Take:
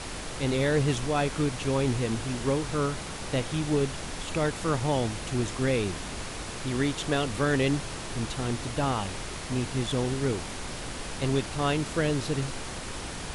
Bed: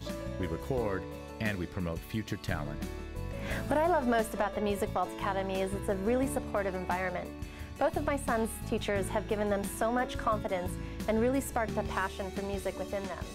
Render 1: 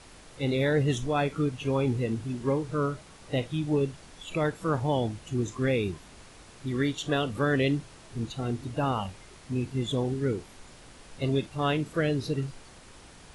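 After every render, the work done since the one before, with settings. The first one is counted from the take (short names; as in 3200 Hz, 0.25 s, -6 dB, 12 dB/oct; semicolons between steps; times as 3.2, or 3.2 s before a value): noise print and reduce 14 dB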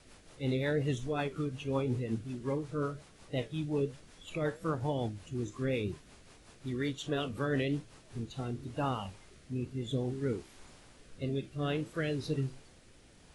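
flange 1 Hz, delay 6.5 ms, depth 9.7 ms, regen +76%; rotary speaker horn 5.5 Hz, later 0.6 Hz, at 7.96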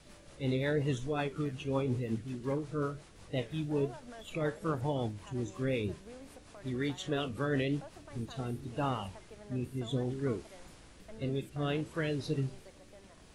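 add bed -21.5 dB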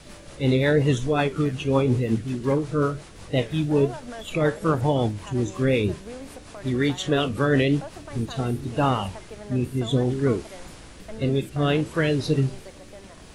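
gain +11.5 dB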